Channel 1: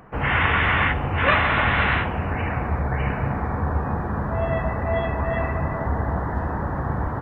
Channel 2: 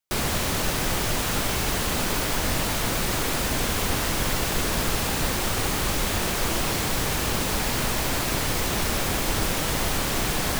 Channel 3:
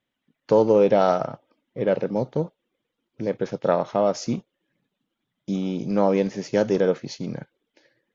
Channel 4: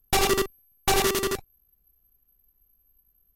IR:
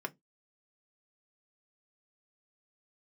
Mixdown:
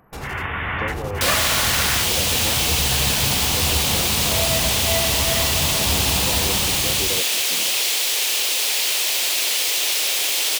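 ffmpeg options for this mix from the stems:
-filter_complex "[0:a]dynaudnorm=framelen=120:gausssize=11:maxgain=8dB,volume=-8dB[link_01];[1:a]highpass=frequency=410:width=0.5412,highpass=frequency=410:width=1.3066,highshelf=frequency=2000:width_type=q:width=1.5:gain=11.5,adelay=1100,volume=-3.5dB[link_02];[2:a]highpass=160,acompressor=threshold=-20dB:ratio=6,adelay=300,volume=-12dB,asplit=2[link_03][link_04];[link_04]volume=-3.5dB[link_05];[3:a]alimiter=level_in=1dB:limit=-24dB:level=0:latency=1:release=206,volume=-1dB,volume=-8dB[link_06];[4:a]atrim=start_sample=2205[link_07];[link_05][link_07]afir=irnorm=-1:irlink=0[link_08];[link_01][link_02][link_03][link_06][link_08]amix=inputs=5:normalize=0"

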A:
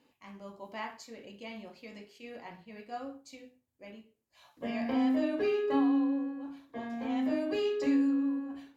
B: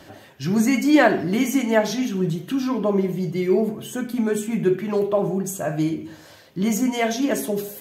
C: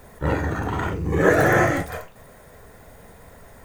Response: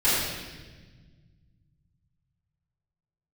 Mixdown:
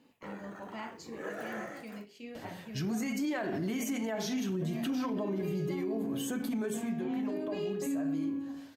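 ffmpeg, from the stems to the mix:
-filter_complex "[0:a]equalizer=frequency=200:width_type=o:width=1.2:gain=7.5,volume=1dB[link_01];[1:a]alimiter=limit=-16.5dB:level=0:latency=1:release=91,adelay=2350,volume=-3dB,afade=type=out:start_time=6.62:duration=0.29:silence=0.281838[link_02];[2:a]highpass=290,agate=range=-18dB:threshold=-36dB:ratio=16:detection=peak,volume=-16dB[link_03];[link_01][link_03]amix=inputs=2:normalize=0,acompressor=threshold=-47dB:ratio=1.5,volume=0dB[link_04];[link_02][link_04]amix=inputs=2:normalize=0,alimiter=level_in=2.5dB:limit=-24dB:level=0:latency=1:release=54,volume=-2.5dB"

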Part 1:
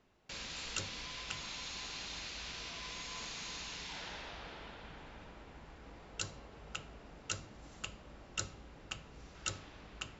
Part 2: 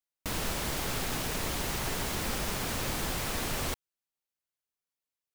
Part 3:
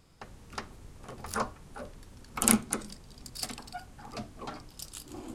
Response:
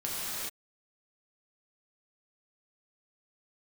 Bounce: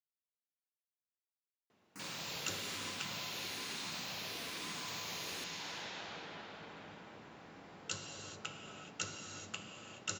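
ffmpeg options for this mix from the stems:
-filter_complex "[0:a]flanger=delay=8.6:depth=3.6:regen=-69:speed=0.74:shape=triangular,adelay=1700,volume=0.5dB,asplit=2[link_01][link_02];[link_02]volume=-6.5dB[link_03];[1:a]asplit=2[link_04][link_05];[link_05]afreqshift=-1.1[link_06];[link_04][link_06]amix=inputs=2:normalize=1,adelay=1700,volume=-14dB,asplit=2[link_07][link_08];[link_08]volume=-17dB[link_09];[3:a]atrim=start_sample=2205[link_10];[link_03][link_09]amix=inputs=2:normalize=0[link_11];[link_11][link_10]afir=irnorm=-1:irlink=0[link_12];[link_01][link_07][link_12]amix=inputs=3:normalize=0,highpass=frequency=110:width=0.5412,highpass=frequency=110:width=1.3066"

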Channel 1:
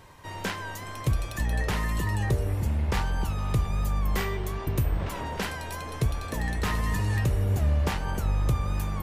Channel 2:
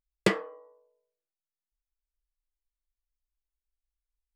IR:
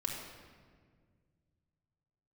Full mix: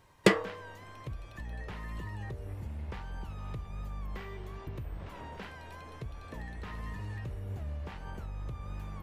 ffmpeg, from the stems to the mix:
-filter_complex "[0:a]acrossover=split=4000[link_01][link_02];[link_02]acompressor=threshold=-54dB:ratio=4:attack=1:release=60[link_03];[link_01][link_03]amix=inputs=2:normalize=0,alimiter=limit=-20.5dB:level=0:latency=1:release=273,volume=-11dB[link_04];[1:a]volume=2dB[link_05];[link_04][link_05]amix=inputs=2:normalize=0"

